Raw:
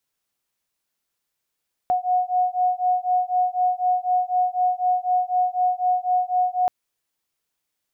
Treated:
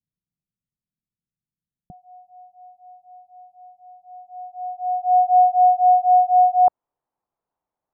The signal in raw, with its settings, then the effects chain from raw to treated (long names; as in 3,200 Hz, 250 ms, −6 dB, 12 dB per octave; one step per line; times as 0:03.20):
two tones that beat 727 Hz, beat 4 Hz, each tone −21.5 dBFS 4.78 s
low-pass filter sweep 170 Hz → 870 Hz, 0:03.94–0:05.43